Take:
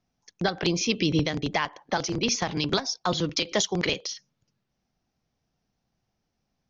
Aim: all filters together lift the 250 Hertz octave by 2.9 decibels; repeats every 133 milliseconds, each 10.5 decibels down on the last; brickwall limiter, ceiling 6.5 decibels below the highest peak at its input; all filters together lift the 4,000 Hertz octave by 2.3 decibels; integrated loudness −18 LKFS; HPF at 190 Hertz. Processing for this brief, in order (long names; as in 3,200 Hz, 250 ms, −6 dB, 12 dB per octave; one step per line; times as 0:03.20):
high-pass filter 190 Hz
parametric band 250 Hz +6 dB
parametric band 4,000 Hz +3 dB
brickwall limiter −15 dBFS
repeating echo 133 ms, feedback 30%, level −10.5 dB
level +8.5 dB